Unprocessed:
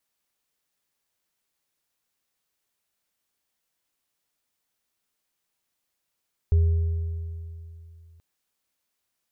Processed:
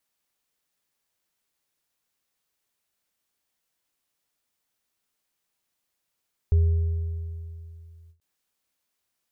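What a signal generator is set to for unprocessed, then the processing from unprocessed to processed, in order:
inharmonic partials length 1.68 s, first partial 83.2 Hz, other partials 404 Hz, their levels −19.5 dB, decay 2.80 s, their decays 2.23 s, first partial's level −14.5 dB
every ending faded ahead of time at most 250 dB per second

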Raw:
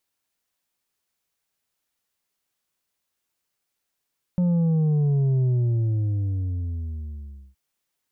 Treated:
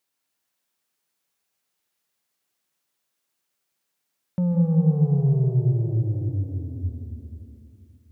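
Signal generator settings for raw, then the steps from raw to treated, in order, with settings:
bass drop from 180 Hz, over 3.17 s, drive 5 dB, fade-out 2.12 s, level −18.5 dB
high-pass filter 120 Hz 12 dB per octave
dense smooth reverb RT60 2.8 s, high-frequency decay 0.85×, pre-delay 120 ms, DRR 2 dB

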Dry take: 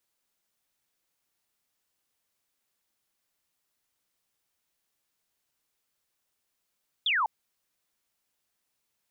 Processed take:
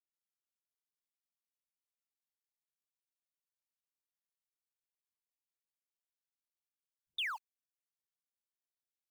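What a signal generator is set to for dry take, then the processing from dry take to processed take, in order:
single falling chirp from 3,700 Hz, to 820 Hz, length 0.20 s sine, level −23 dB
mu-law and A-law mismatch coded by A
guitar amp tone stack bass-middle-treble 5-5-5
all-pass dispersion highs, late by 124 ms, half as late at 370 Hz

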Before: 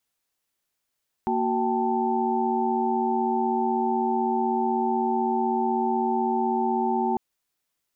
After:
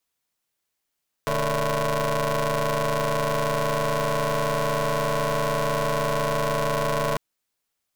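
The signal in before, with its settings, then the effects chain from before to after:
held notes A#3/F#4/G5/A5 sine, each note −27 dBFS 5.90 s
ring modulator with a square carrier 220 Hz

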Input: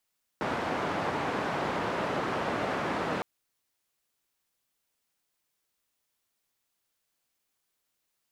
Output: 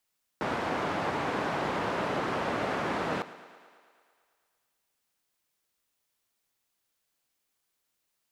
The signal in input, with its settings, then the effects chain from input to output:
band-limited noise 120–1,100 Hz, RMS −31 dBFS 2.81 s
feedback echo with a high-pass in the loop 111 ms, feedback 71%, high-pass 170 Hz, level −16.5 dB

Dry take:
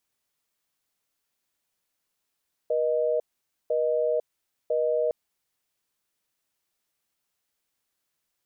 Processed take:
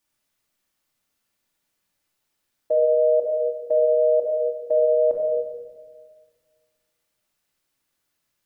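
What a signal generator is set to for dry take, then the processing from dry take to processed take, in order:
call progress tone busy tone, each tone −24.5 dBFS 2.41 s
dynamic equaliser 610 Hz, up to +4 dB, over −33 dBFS, Q 0.8
rectangular room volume 1,500 cubic metres, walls mixed, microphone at 2.5 metres

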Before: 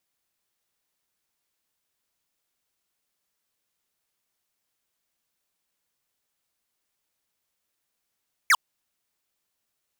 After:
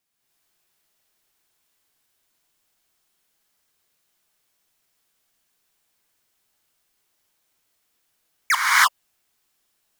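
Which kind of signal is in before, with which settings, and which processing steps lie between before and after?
single falling chirp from 2,400 Hz, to 910 Hz, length 0.05 s square, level −17 dB
notch filter 550 Hz, Q 16
reverb whose tail is shaped and stops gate 340 ms rising, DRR −8 dB

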